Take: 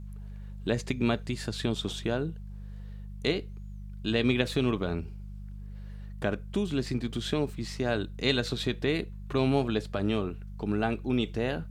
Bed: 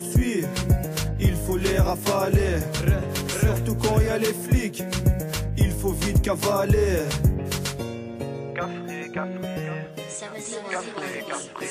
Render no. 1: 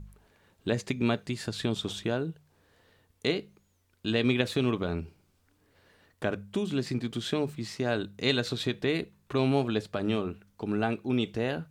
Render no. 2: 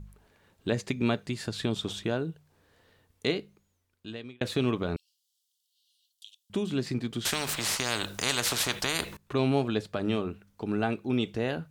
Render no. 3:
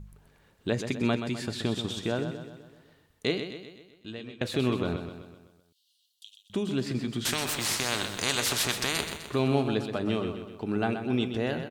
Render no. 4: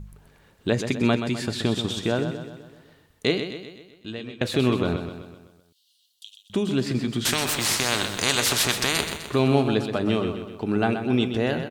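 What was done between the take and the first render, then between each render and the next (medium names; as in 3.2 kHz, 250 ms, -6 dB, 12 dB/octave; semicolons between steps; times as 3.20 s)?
de-hum 50 Hz, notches 4
3.28–4.41 s: fade out; 4.96–6.50 s: steep high-pass 3 kHz 96 dB/octave; 7.25–9.17 s: spectrum-flattening compressor 4:1
feedback delay 127 ms, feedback 52%, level -8.5 dB
trim +5.5 dB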